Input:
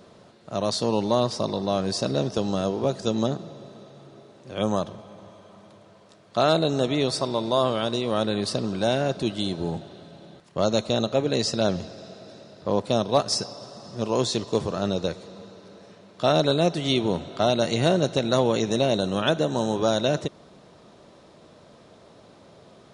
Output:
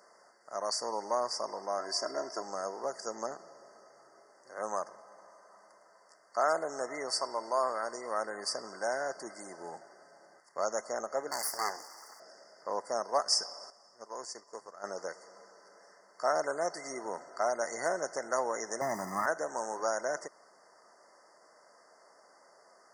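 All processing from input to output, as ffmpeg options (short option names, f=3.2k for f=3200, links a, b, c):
-filter_complex "[0:a]asettb=1/sr,asplit=3[a][b][c];[a]atrim=end=1.794[d];[b]atrim=start=1.79:end=2.42,asetpts=PTS-STARTPTS,afade=t=in:d=0.004:c=qsin,afade=t=out:st=0.626:d=0.004:c=qsin,equalizer=f=9.2k:w=0.99:g=-5.5,aecho=1:1:3:0.67,atrim=end_sample=27783[e];[c]atrim=start=2.416[f];[d][e]acrossfade=d=0.004:c1=hsin:c2=qsin[g];[g][f]acrossfade=d=0.004:c1=qsin:c2=hsin,asettb=1/sr,asplit=3[h][i][j];[h]atrim=end=11.314[k];[i]atrim=start=11.31:end=12.2,asetpts=PTS-STARTPTS,afade=t=in:d=0.004:c=qsin,afade=t=out:st=0.886:d=0.004:c=qsin,acrossover=split=4700[l][m];[m]acompressor=threshold=-35dB:ratio=4:attack=1:release=60[n];[l][n]amix=inputs=2:normalize=0,aeval=exprs='abs(val(0))':c=same,highshelf=f=8.2k:g=8.5[o];[j]atrim=start=12.196[p];[k][o]acrossfade=d=0.004:c1=hsin:c2=qsin[q];[q][p]acrossfade=d=0.004:c1=qsin:c2=hsin,asettb=1/sr,asplit=3[r][s][t];[r]atrim=end=13.704[u];[s]atrim=start=13.7:end=14.84,asetpts=PTS-STARTPTS,afade=t=in:d=0.004:c=qsin,afade=t=out:st=1.136:d=0.004:c=qsin,acompressor=threshold=-39dB:ratio=1.5:attack=3.2:release=140:knee=1:detection=peak,agate=range=-10dB:threshold=-34dB:ratio=16:release=100:detection=peak[v];[t]atrim=start=14.836[w];[u][v]acrossfade=d=0.004:c1=hsin:c2=qsin[x];[x][w]acrossfade=d=0.004:c1=qsin:c2=hsin,asettb=1/sr,asplit=3[y][z][aa];[y]atrim=end=18.814[ab];[z]atrim=start=18.81:end=19.26,asetpts=PTS-STARTPTS,afade=t=in:d=0.004:c=qsin,afade=t=out:st=0.446:d=0.004:c=qsin,aeval=exprs='val(0)+0.5*0.0266*sgn(val(0))':c=same,bass=f=250:g=11,treble=f=4k:g=-5,aecho=1:1:1:0.79,atrim=end_sample=19845[ac];[aa]atrim=start=19.256[ad];[ab][ac]acrossfade=d=0.004:c1=hsin:c2=qsin[ae];[ae][ad]acrossfade=d=0.004:c1=qsin:c2=hsin,afftfilt=real='re*(1-between(b*sr/4096,2100,4500))':imag='im*(1-between(b*sr/4096,2100,4500))':win_size=4096:overlap=0.75,highpass=870,volume=-2dB"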